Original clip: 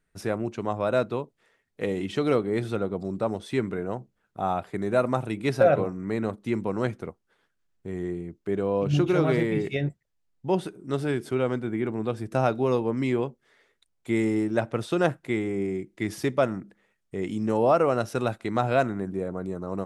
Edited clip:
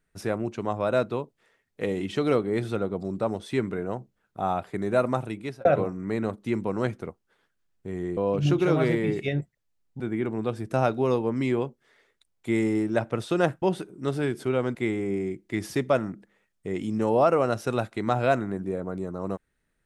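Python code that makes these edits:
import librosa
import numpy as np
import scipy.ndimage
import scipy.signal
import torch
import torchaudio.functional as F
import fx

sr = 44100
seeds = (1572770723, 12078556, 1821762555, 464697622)

y = fx.edit(x, sr, fx.fade_out_span(start_s=4.98, length_s=0.67, curve='qsin'),
    fx.cut(start_s=8.17, length_s=0.48),
    fx.move(start_s=10.48, length_s=1.13, to_s=15.23), tone=tone)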